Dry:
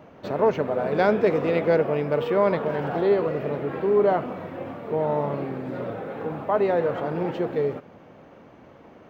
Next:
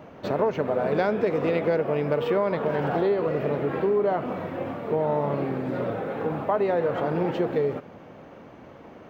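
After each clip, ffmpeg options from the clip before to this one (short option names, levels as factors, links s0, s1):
-af "acompressor=threshold=0.0708:ratio=6,volume=1.41"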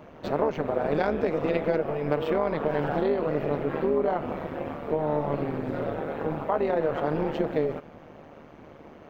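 -af "tremolo=f=150:d=0.788,volume=1.19"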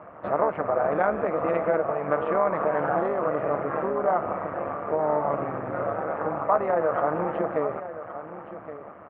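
-filter_complex "[0:a]asplit=2[s0][s1];[s1]volume=12.6,asoftclip=hard,volume=0.0794,volume=0.355[s2];[s0][s2]amix=inputs=2:normalize=0,highpass=110,equalizer=f=150:t=q:w=4:g=-8,equalizer=f=250:t=q:w=4:g=-10,equalizer=f=400:t=q:w=4:g=-7,equalizer=f=670:t=q:w=4:g=4,equalizer=f=1200:t=q:w=4:g=9,lowpass=f=2000:w=0.5412,lowpass=f=2000:w=1.3066,aecho=1:1:1120:0.224"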